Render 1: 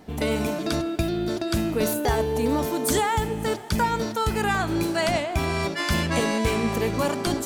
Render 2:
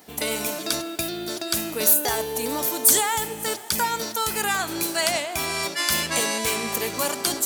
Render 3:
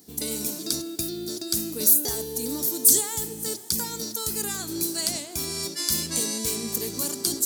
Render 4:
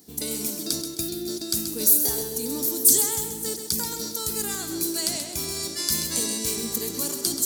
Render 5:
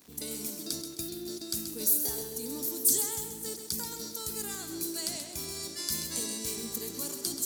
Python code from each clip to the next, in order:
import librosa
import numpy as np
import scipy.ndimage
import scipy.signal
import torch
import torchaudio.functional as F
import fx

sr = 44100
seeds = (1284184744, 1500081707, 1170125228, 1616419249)

y1 = fx.riaa(x, sr, side='recording')
y1 = F.gain(torch.from_numpy(y1), -1.0).numpy()
y2 = fx.band_shelf(y1, sr, hz=1300.0, db=-14.5, octaves=2.9)
y3 = fx.echo_feedback(y2, sr, ms=131, feedback_pct=36, wet_db=-8)
y4 = fx.dmg_crackle(y3, sr, seeds[0], per_s=270.0, level_db=-36.0)
y4 = F.gain(torch.from_numpy(y4), -8.0).numpy()